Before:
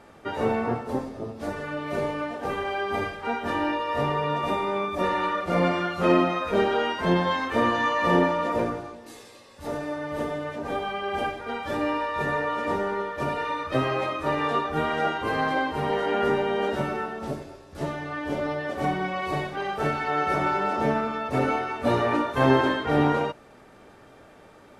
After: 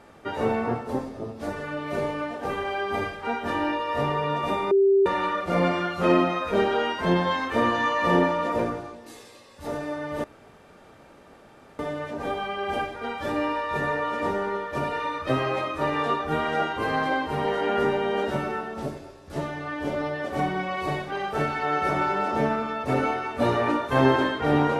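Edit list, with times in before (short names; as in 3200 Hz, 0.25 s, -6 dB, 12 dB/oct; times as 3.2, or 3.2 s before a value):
4.71–5.06 bleep 392 Hz -15 dBFS
10.24 insert room tone 1.55 s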